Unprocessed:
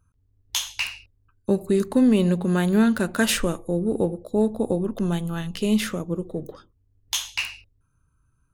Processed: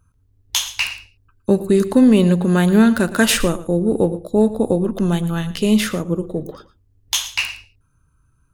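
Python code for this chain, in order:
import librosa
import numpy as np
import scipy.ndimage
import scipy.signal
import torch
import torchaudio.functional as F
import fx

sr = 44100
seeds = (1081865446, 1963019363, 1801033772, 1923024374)

y = x + 10.0 ** (-16.0 / 20.0) * np.pad(x, (int(113 * sr / 1000.0), 0))[:len(x)]
y = F.gain(torch.from_numpy(y), 6.0).numpy()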